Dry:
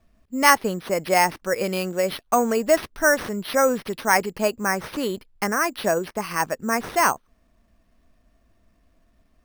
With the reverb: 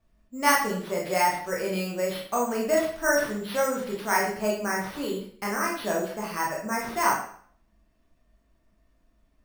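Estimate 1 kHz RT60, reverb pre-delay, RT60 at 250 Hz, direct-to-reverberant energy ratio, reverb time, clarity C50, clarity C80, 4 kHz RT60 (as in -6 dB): 0.55 s, 17 ms, 0.50 s, -3.5 dB, 0.55 s, 4.5 dB, 8.0 dB, 0.50 s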